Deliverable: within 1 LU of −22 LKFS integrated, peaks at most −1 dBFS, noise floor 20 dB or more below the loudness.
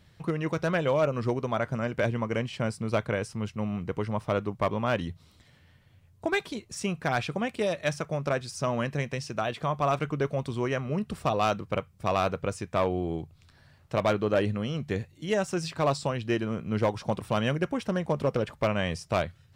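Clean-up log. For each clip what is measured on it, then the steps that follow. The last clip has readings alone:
share of clipped samples 0.4%; peaks flattened at −17.5 dBFS; integrated loudness −29.5 LKFS; sample peak −17.5 dBFS; target loudness −22.0 LKFS
→ clipped peaks rebuilt −17.5 dBFS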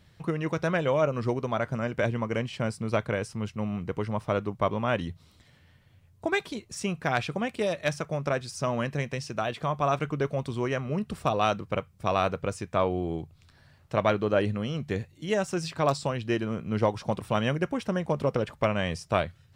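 share of clipped samples 0.0%; integrated loudness −29.0 LKFS; sample peak −9.0 dBFS; target loudness −22.0 LKFS
→ level +7 dB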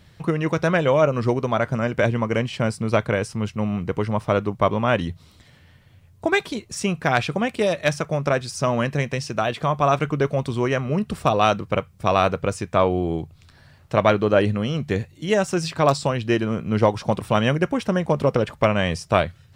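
integrated loudness −22.0 LKFS; sample peak −2.0 dBFS; background noise floor −52 dBFS

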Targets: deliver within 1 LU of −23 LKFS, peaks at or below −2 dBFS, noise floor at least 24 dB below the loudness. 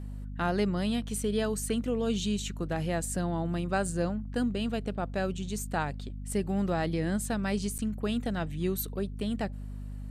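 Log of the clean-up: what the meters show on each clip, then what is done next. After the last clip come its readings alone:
number of dropouts 1; longest dropout 8.5 ms; mains hum 50 Hz; hum harmonics up to 250 Hz; level of the hum −36 dBFS; integrated loudness −31.5 LKFS; sample peak −16.5 dBFS; target loudness −23.0 LKFS
→ repair the gap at 0:07.78, 8.5 ms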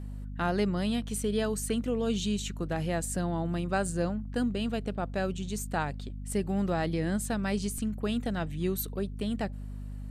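number of dropouts 0; mains hum 50 Hz; hum harmonics up to 250 Hz; level of the hum −36 dBFS
→ hum removal 50 Hz, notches 5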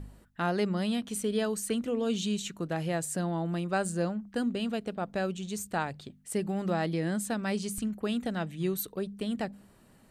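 mains hum none found; integrated loudness −32.0 LKFS; sample peak −17.5 dBFS; target loudness −23.0 LKFS
→ level +9 dB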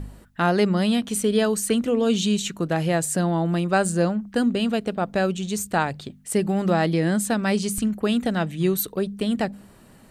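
integrated loudness −23.0 LKFS; sample peak −8.5 dBFS; background noise floor −50 dBFS

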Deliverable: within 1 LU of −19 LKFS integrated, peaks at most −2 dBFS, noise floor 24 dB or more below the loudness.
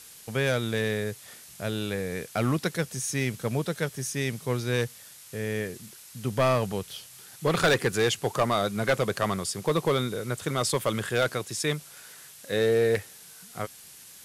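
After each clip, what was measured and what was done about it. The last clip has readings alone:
share of clipped samples 0.7%; peaks flattened at −16.5 dBFS; background noise floor −49 dBFS; target noise floor −52 dBFS; integrated loudness −28.0 LKFS; sample peak −16.5 dBFS; target loudness −19.0 LKFS
→ clipped peaks rebuilt −16.5 dBFS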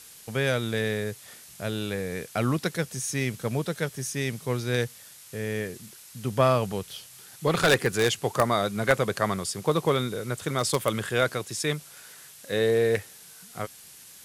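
share of clipped samples 0.0%; background noise floor −49 dBFS; target noise floor −51 dBFS
→ noise reduction from a noise print 6 dB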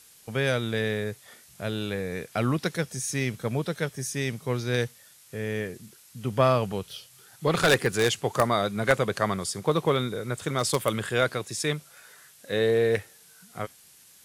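background noise floor −55 dBFS; integrated loudness −27.0 LKFS; sample peak −7.5 dBFS; target loudness −19.0 LKFS
→ level +8 dB
brickwall limiter −2 dBFS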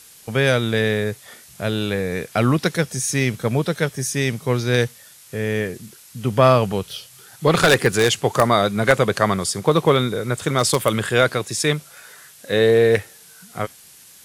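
integrated loudness −19.5 LKFS; sample peak −2.0 dBFS; background noise floor −47 dBFS

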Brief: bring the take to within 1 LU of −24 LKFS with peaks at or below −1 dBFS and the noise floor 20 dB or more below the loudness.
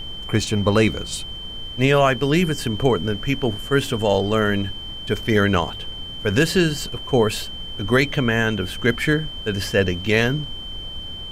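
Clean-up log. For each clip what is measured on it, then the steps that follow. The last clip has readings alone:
interfering tone 3,100 Hz; level of the tone −32 dBFS; background noise floor −33 dBFS; target noise floor −41 dBFS; integrated loudness −21.0 LKFS; sample peak −4.5 dBFS; target loudness −24.0 LKFS
→ notch filter 3,100 Hz, Q 30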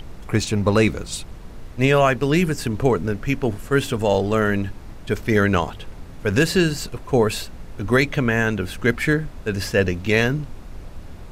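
interfering tone none found; background noise floor −38 dBFS; target noise floor −41 dBFS
→ noise reduction from a noise print 6 dB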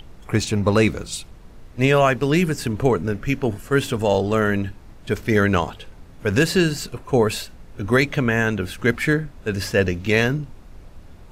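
background noise floor −43 dBFS; integrated loudness −21.0 LKFS; sample peak −4.5 dBFS; target loudness −24.0 LKFS
→ level −3 dB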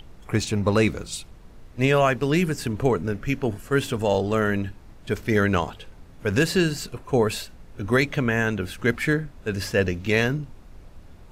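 integrated loudness −24.0 LKFS; sample peak −7.5 dBFS; background noise floor −46 dBFS

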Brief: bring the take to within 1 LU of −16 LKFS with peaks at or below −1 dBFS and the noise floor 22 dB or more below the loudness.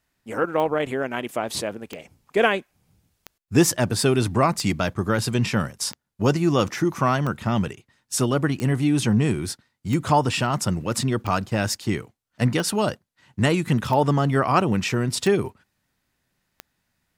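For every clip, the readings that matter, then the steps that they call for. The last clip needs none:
number of clicks 13; integrated loudness −23.0 LKFS; sample peak −3.5 dBFS; target loudness −16.0 LKFS
→ click removal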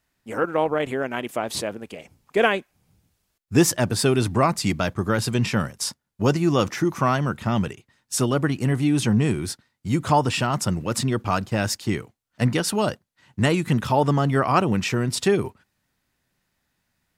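number of clicks 0; integrated loudness −23.0 LKFS; sample peak −3.5 dBFS; target loudness −16.0 LKFS
→ level +7 dB
brickwall limiter −1 dBFS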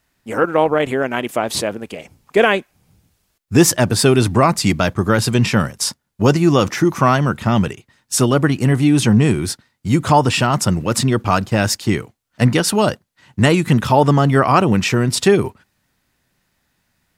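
integrated loudness −16.0 LKFS; sample peak −1.0 dBFS; background noise floor −68 dBFS

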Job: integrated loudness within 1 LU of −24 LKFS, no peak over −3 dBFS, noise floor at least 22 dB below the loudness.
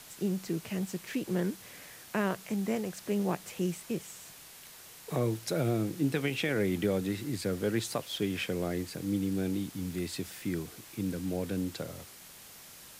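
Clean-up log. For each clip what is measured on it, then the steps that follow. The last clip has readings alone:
background noise floor −51 dBFS; target noise floor −56 dBFS; integrated loudness −33.5 LKFS; sample peak −16.5 dBFS; target loudness −24.0 LKFS
→ broadband denoise 6 dB, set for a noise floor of −51 dBFS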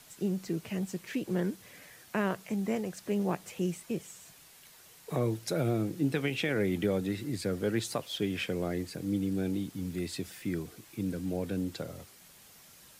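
background noise floor −56 dBFS; integrated loudness −33.5 LKFS; sample peak −16.5 dBFS; target loudness −24.0 LKFS
→ level +9.5 dB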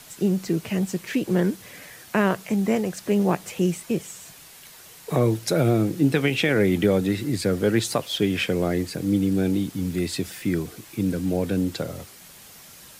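integrated loudness −24.0 LKFS; sample peak −7.0 dBFS; background noise floor −47 dBFS

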